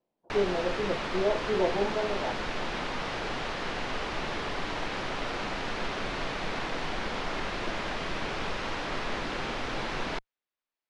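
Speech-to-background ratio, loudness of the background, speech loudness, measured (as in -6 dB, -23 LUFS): 2.5 dB, -33.5 LUFS, -31.0 LUFS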